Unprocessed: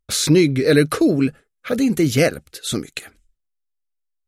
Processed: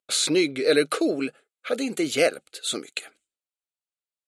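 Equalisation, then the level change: speaker cabinet 490–9700 Hz, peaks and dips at 1000 Hz -8 dB, 1800 Hz -7 dB, 5800 Hz -8 dB; notch 5100 Hz, Q 16; 0.0 dB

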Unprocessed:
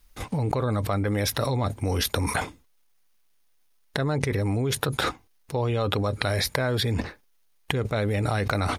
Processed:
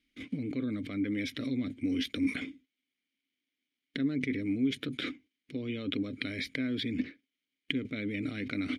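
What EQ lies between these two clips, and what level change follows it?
vowel filter i; +6.0 dB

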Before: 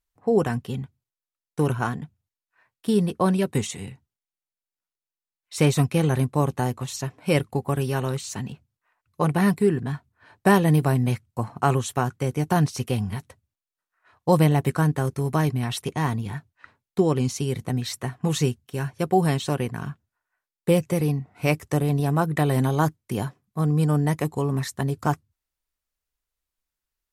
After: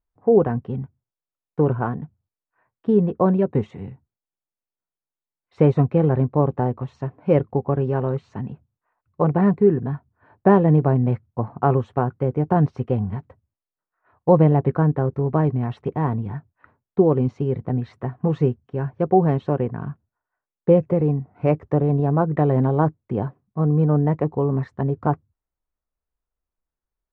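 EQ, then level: LPF 1100 Hz 12 dB/oct; dynamic EQ 490 Hz, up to +4 dB, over -35 dBFS, Q 1.7; air absorption 50 m; +2.5 dB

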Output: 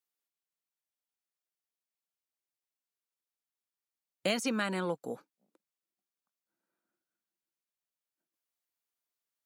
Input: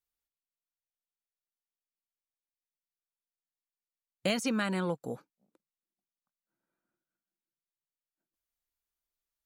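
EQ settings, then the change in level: HPF 210 Hz; 0.0 dB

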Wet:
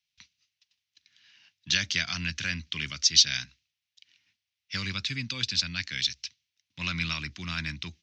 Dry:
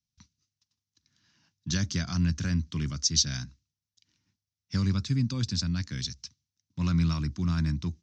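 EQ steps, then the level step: three-band isolator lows -13 dB, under 510 Hz, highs -18 dB, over 3300 Hz; resonant high shelf 1700 Hz +13.5 dB, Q 1.5; +2.0 dB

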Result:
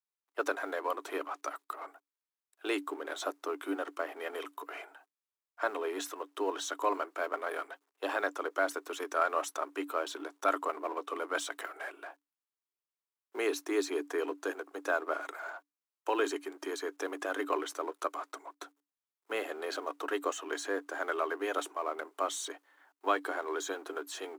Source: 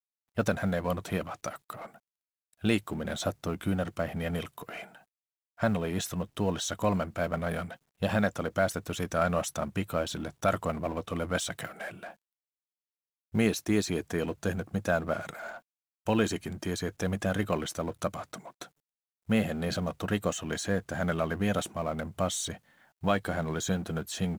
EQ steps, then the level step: rippled Chebyshev high-pass 280 Hz, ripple 9 dB; +3.5 dB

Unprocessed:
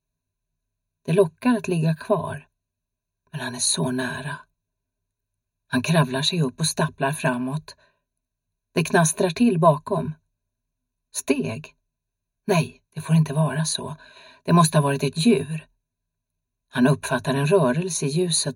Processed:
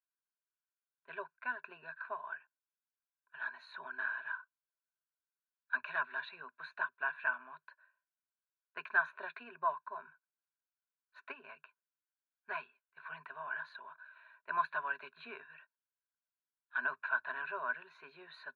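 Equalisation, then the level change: ladder band-pass 1500 Hz, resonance 70%; air absorption 440 m; +2.0 dB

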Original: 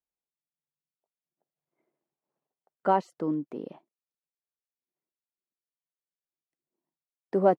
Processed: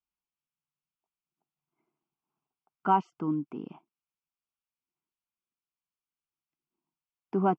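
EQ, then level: LPF 3500 Hz 12 dB/oct; fixed phaser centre 2700 Hz, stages 8; +3.5 dB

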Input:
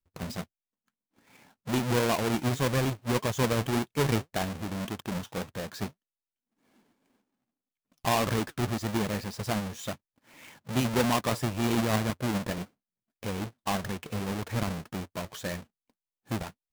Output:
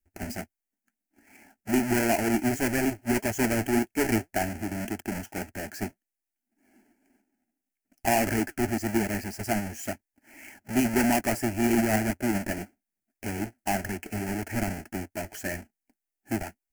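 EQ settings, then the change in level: bell 1100 Hz -9 dB 0.53 oct; fixed phaser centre 740 Hz, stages 8; +6.5 dB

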